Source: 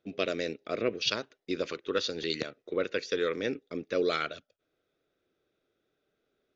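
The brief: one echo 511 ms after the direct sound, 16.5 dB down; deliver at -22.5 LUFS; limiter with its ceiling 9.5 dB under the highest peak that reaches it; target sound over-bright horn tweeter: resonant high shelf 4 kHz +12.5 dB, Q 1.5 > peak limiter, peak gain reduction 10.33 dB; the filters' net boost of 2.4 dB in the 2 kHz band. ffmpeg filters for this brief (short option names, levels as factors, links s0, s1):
-af "equalizer=f=2000:t=o:g=6,alimiter=limit=0.106:level=0:latency=1,highshelf=f=4000:t=q:w=1.5:g=12.5,aecho=1:1:511:0.15,volume=3.35,alimiter=limit=0.316:level=0:latency=1"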